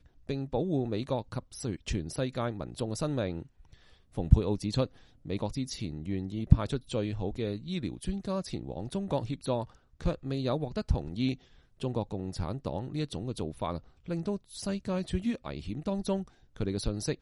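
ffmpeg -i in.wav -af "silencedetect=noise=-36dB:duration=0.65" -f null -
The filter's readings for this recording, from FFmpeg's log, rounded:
silence_start: 3.42
silence_end: 4.17 | silence_duration: 0.75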